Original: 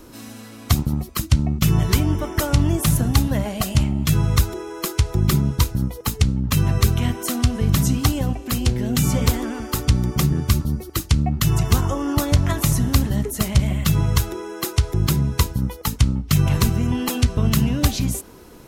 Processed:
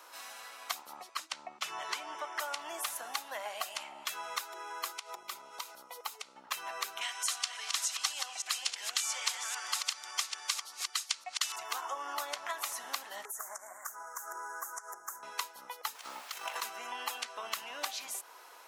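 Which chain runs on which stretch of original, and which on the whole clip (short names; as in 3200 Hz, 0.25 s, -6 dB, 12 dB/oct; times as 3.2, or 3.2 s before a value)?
0.97–2.4 LPF 8400 Hz + low shelf 91 Hz +10 dB
4.91–6.36 notch 1700 Hz, Q 6.5 + compressor 4:1, threshold -23 dBFS
7.01–11.56 reverse delay 0.282 s, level -8 dB + weighting filter ITU-R 468
13.25–15.23 elliptic band-stop 1600–6400 Hz, stop band 50 dB + tilt shelf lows -6 dB, about 840 Hz + compressor 4:1, threshold -29 dBFS
15.94–16.61 tone controls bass -6 dB, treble +2 dB + negative-ratio compressor -25 dBFS, ratio -0.5 + added noise pink -43 dBFS
whole clip: HPF 800 Hz 24 dB/oct; tilt -2 dB/oct; compressor 2:1, threshold -39 dBFS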